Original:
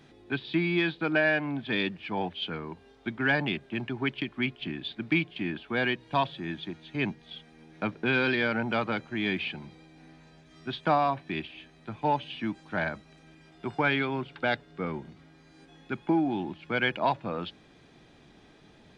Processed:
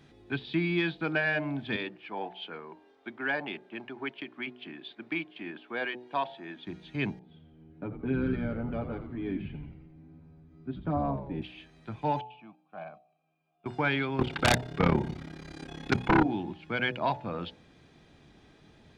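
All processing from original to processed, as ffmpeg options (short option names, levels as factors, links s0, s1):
-filter_complex "[0:a]asettb=1/sr,asplit=3[s0][s1][s2];[s0]atrim=end=1.764[s3];[s1]atrim=start=1.76:end=6.67,asetpts=PTS-STARTPTS,afade=t=in:d=0.004:c=qsin,afade=t=out:st=4.906:d=0.004:c=qsin,highpass=380,highshelf=f=3300:g=-11[s4];[s2]atrim=start=6.666[s5];[s3][s4]acrossfade=d=0.004:c1=hsin:c2=qsin[s6];[s6][s5]acrossfade=d=0.004:c1=qsin:c2=hsin,asettb=1/sr,asplit=3[s7][s8][s9];[s7]atrim=end=7.194[s10];[s8]atrim=start=7.19:end=11.42,asetpts=PTS-STARTPTS,afade=t=in:d=0.004:c=qsin,afade=t=out:st=4.226:d=0.004:c=qsin,bandpass=f=240:t=q:w=0.97,aecho=1:1:7.1:0.75,atrim=end_sample=186543,asplit=8[s11][s12][s13][s14][s15][s16][s17][s18];[s12]adelay=86,afreqshift=-76,volume=0.355[s19];[s13]adelay=172,afreqshift=-152,volume=0.2[s20];[s14]adelay=258,afreqshift=-228,volume=0.111[s21];[s15]adelay=344,afreqshift=-304,volume=0.0624[s22];[s16]adelay=430,afreqshift=-380,volume=0.0351[s23];[s17]adelay=516,afreqshift=-456,volume=0.0195[s24];[s18]adelay=602,afreqshift=-532,volume=0.011[s25];[s11][s19][s20][s21][s22][s23][s24][s25]amix=inputs=8:normalize=0,atrim=end_sample=186543[s26];[s9]atrim=start=11.416[s27];[s10][s26]acrossfade=d=0.004:c1=hsin:c2=qsin[s28];[s28][s27]acrossfade=d=0.004:c1=qsin:c2=hsin,asettb=1/sr,asplit=3[s29][s30][s31];[s29]atrim=end=12.214[s32];[s30]atrim=start=12.21:end=13.66,asetpts=PTS-STARTPTS,afade=t=in:d=0.004:c=qsin,afade=t=out:st=1.446:d=0.004:c=qsin,asplit=3[s33][s34][s35];[s33]bandpass=f=730:t=q:w=8,volume=1[s36];[s34]bandpass=f=1090:t=q:w=8,volume=0.501[s37];[s35]bandpass=f=2440:t=q:w=8,volume=0.355[s38];[s36][s37][s38]amix=inputs=3:normalize=0,equalizer=f=160:w=1.6:g=12.5,agate=range=0.398:threshold=0.00126:ratio=16:release=100:detection=peak[s39];[s31]atrim=start=13.656[s40];[s32][s39]acrossfade=d=0.004:c1=hsin:c2=qsin[s41];[s41][s40]acrossfade=d=0.004:c1=qsin:c2=hsin,asettb=1/sr,asplit=3[s42][s43][s44];[s42]atrim=end=14.194[s45];[s43]atrim=start=14.19:end=16.23,asetpts=PTS-STARTPTS,afade=t=in:d=0.004:c=qsin,afade=t=out:st=2.036:d=0.004:c=qsin,tremolo=f=34:d=0.947,aeval=exprs='0.188*sin(PI/2*4.47*val(0)/0.188)':c=same[s46];[s44]atrim=start=16.226[s47];[s45][s46]acrossfade=d=0.004:c1=hsin:c2=qsin[s48];[s48][s47]acrossfade=d=0.004:c1=qsin:c2=hsin,equalizer=f=68:w=0.6:g=6,bandreject=f=61.91:t=h:w=4,bandreject=f=123.82:t=h:w=4,bandreject=f=185.73:t=h:w=4,bandreject=f=247.64:t=h:w=4,bandreject=f=309.55:t=h:w=4,bandreject=f=371.46:t=h:w=4,bandreject=f=433.37:t=h:w=4,bandreject=f=495.28:t=h:w=4,bandreject=f=557.19:t=h:w=4,bandreject=f=619.1:t=h:w=4,bandreject=f=681.01:t=h:w=4,bandreject=f=742.92:t=h:w=4,bandreject=f=804.83:t=h:w=4,bandreject=f=866.74:t=h:w=4,bandreject=f=928.65:t=h:w=4,volume=0.75"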